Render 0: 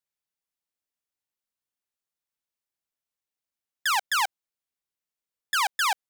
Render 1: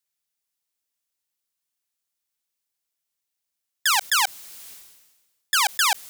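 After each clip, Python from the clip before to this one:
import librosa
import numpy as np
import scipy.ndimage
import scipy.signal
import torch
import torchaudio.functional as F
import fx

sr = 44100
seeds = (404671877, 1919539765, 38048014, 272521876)

y = fx.high_shelf(x, sr, hz=2600.0, db=9.5)
y = fx.sustainer(y, sr, db_per_s=47.0)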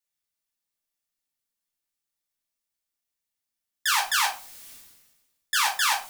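y = fx.room_shoebox(x, sr, seeds[0], volume_m3=250.0, walls='furnished', distance_m=2.5)
y = y * 10.0 ** (-7.0 / 20.0)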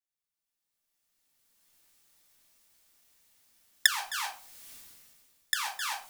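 y = fx.recorder_agc(x, sr, target_db=-13.0, rise_db_per_s=17.0, max_gain_db=30)
y = y * 10.0 ** (-11.0 / 20.0)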